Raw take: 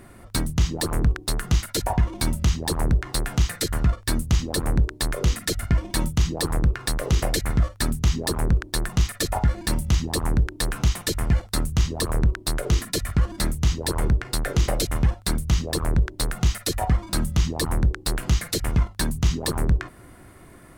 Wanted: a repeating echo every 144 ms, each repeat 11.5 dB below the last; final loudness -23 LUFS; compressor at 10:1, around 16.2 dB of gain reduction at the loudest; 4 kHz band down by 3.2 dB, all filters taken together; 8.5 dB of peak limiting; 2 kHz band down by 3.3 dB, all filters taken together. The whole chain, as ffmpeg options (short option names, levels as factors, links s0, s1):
-af "equalizer=f=2000:t=o:g=-3.5,equalizer=f=4000:t=o:g=-3,acompressor=threshold=0.0282:ratio=10,alimiter=level_in=1.19:limit=0.0631:level=0:latency=1,volume=0.841,aecho=1:1:144|288|432:0.266|0.0718|0.0194,volume=5.96"